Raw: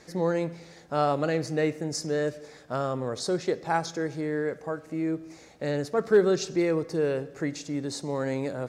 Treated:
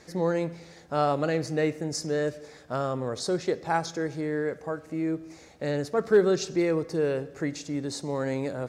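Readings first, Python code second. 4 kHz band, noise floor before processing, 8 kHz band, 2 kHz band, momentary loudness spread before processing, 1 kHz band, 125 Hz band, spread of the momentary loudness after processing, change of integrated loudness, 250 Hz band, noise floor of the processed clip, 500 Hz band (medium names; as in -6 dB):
0.0 dB, -51 dBFS, 0.0 dB, 0.0 dB, 8 LU, 0.0 dB, 0.0 dB, 8 LU, 0.0 dB, 0.0 dB, -51 dBFS, 0.0 dB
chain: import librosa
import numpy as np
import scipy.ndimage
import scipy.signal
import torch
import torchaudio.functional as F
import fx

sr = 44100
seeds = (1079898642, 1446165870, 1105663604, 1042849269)

y = fx.peak_eq(x, sr, hz=77.0, db=8.0, octaves=0.33)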